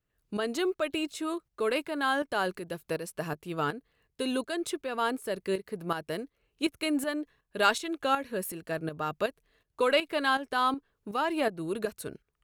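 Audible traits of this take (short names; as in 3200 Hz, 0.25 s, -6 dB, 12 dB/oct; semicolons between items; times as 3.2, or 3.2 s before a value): tremolo saw up 2.7 Hz, depth 65%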